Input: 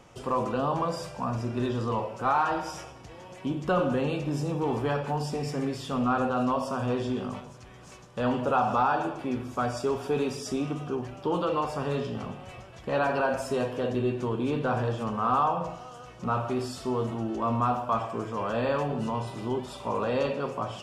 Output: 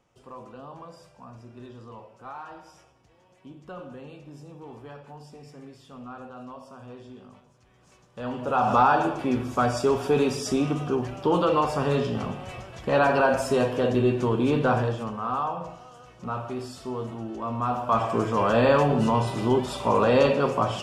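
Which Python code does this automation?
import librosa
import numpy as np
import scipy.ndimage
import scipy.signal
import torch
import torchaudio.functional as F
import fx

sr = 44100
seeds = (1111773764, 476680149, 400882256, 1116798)

y = fx.gain(x, sr, db=fx.line((7.4, -15.0), (8.38, -4.5), (8.73, 5.5), (14.7, 5.5), (15.19, -3.5), (17.54, -3.5), (18.12, 8.0)))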